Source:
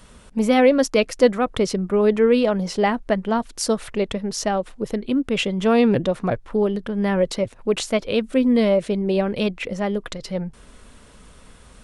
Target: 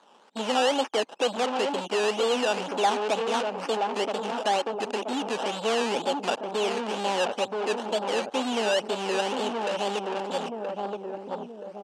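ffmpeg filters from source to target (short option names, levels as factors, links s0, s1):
-filter_complex "[0:a]afwtdn=0.0891,asplit=2[s0][s1];[s1]acompressor=threshold=0.0447:ratio=6,volume=0.891[s2];[s0][s2]amix=inputs=2:normalize=0,acrusher=samples=16:mix=1:aa=0.000001:lfo=1:lforange=9.6:lforate=2.1,asplit=2[s3][s4];[s4]adelay=975,lowpass=f=820:p=1,volume=0.398,asplit=2[s5][s6];[s6]adelay=975,lowpass=f=820:p=1,volume=0.41,asplit=2[s7][s8];[s8]adelay=975,lowpass=f=820:p=1,volume=0.41,asplit=2[s9][s10];[s10]adelay=975,lowpass=f=820:p=1,volume=0.41,asplit=2[s11][s12];[s12]adelay=975,lowpass=f=820:p=1,volume=0.41[s13];[s3][s5][s7][s9][s11][s13]amix=inputs=6:normalize=0,asoftclip=type=tanh:threshold=0.1,aeval=exprs='0.1*(cos(1*acos(clip(val(0)/0.1,-1,1)))-cos(1*PI/2))+0.02*(cos(5*acos(clip(val(0)/0.1,-1,1)))-cos(5*PI/2))+0.00891*(cos(6*acos(clip(val(0)/0.1,-1,1)))-cos(6*PI/2))':c=same,highpass=f=280:w=0.5412,highpass=f=280:w=1.3066,equalizer=f=320:t=q:w=4:g=-5,equalizer=f=840:t=q:w=4:g=9,equalizer=f=2000:t=q:w=4:g=-5,equalizer=f=2900:t=q:w=4:g=8,lowpass=f=8400:w=0.5412,lowpass=f=8400:w=1.3066,volume=0.794"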